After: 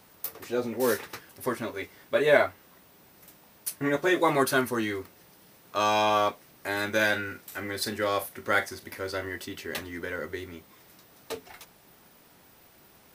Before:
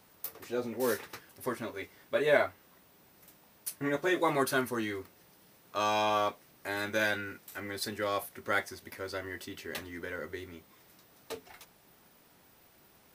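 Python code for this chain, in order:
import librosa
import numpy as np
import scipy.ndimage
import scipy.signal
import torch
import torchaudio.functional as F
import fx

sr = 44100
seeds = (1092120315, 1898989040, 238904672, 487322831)

y = fx.doubler(x, sr, ms=42.0, db=-13.0, at=(7.05, 9.29))
y = y * librosa.db_to_amplitude(5.0)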